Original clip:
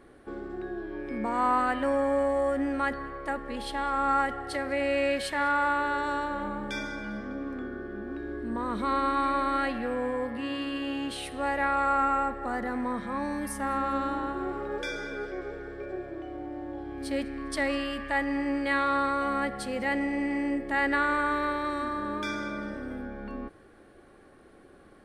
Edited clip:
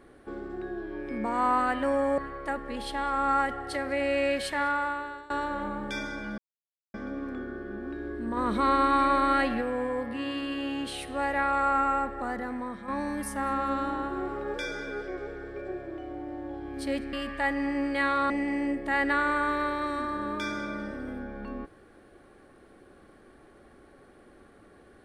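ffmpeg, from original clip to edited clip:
-filter_complex "[0:a]asplit=9[s0][s1][s2][s3][s4][s5][s6][s7][s8];[s0]atrim=end=2.182[s9];[s1]atrim=start=2.978:end=6.1,asetpts=PTS-STARTPTS,afade=t=out:st=2.382:d=0.74:silence=0.0749894[s10];[s2]atrim=start=6.1:end=7.18,asetpts=PTS-STARTPTS,afade=t=in:d=0.004:c=hsin:silence=0.0749894,afade=t=out:st=1.076:d=0.004:c=hsin,apad=pad_dur=0.56[s11];[s3]atrim=start=7.18:end=8.612,asetpts=PTS-STARTPTS,afade=t=in:d=0.004:c=hsin[s12];[s4]atrim=start=8.608:end=9.852,asetpts=PTS-STARTPTS,volume=1.5[s13];[s5]atrim=start=9.848:end=13.12,asetpts=PTS-STARTPTS,afade=t=out:st=2.532:d=0.74:silence=0.421697[s14];[s6]atrim=start=13.12:end=17.372,asetpts=PTS-STARTPTS,afade=t=in:d=0.004:c=hsin:silence=0.421697[s15];[s7]atrim=start=17.838:end=19.012[s16];[s8]atrim=start=20.128[s17];[s10][s11][s12]concat=n=3:v=0:a=1[s18];[s9][s18]acrossfade=d=0.004:c1=hsin:c2=hsin[s19];[s19][s13]acrossfade=d=0.004:c1=hsin:c2=hsin[s20];[s14][s15]concat=n=2:v=0:a=1[s21];[s20][s21]acrossfade=d=0.004:c1=hsin:c2=hsin[s22];[s22][s16]acrossfade=d=0.004:c1=hsin:c2=hsin[s23];[s23][s17]acrossfade=d=0.004:c1=hsin:c2=hsin"

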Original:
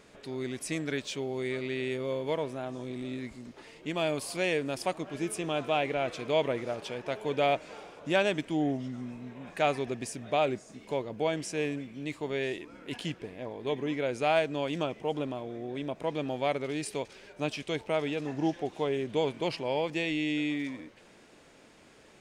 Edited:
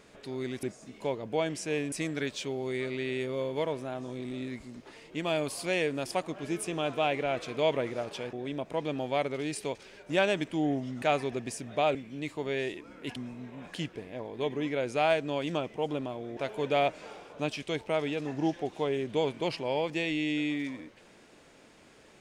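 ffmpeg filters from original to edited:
-filter_complex "[0:a]asplit=11[s0][s1][s2][s3][s4][s5][s6][s7][s8][s9][s10];[s0]atrim=end=0.632[s11];[s1]atrim=start=10.498:end=11.792[s12];[s2]atrim=start=0.628:end=7.042[s13];[s3]atrim=start=15.628:end=17.402[s14];[s4]atrim=start=8.068:end=8.992[s15];[s5]atrim=start=9.568:end=10.502[s16];[s6]atrim=start=11.788:end=13.002[s17];[s7]atrim=start=8.988:end=9.572[s18];[s8]atrim=start=12.998:end=15.632[s19];[s9]atrim=start=7.038:end=8.072[s20];[s10]atrim=start=17.398[s21];[s11][s12]acrossfade=d=0.004:c1=hsin:c2=hsin[s22];[s22][s13]acrossfade=d=0.004:c1=hsin:c2=hsin[s23];[s23][s14]acrossfade=d=0.004:c1=hsin:c2=hsin[s24];[s24][s15]acrossfade=d=0.004:c1=hsin:c2=hsin[s25];[s25][s16]acrossfade=d=0.004:c1=hsin:c2=hsin[s26];[s26][s17]acrossfade=d=0.004:c1=hsin:c2=hsin[s27];[s27][s18]acrossfade=d=0.004:c1=hsin:c2=hsin[s28];[s28][s19]acrossfade=d=0.004:c1=hsin:c2=hsin[s29];[s29][s20]acrossfade=d=0.004:c1=hsin:c2=hsin[s30];[s30][s21]acrossfade=d=0.004:c1=hsin:c2=hsin"

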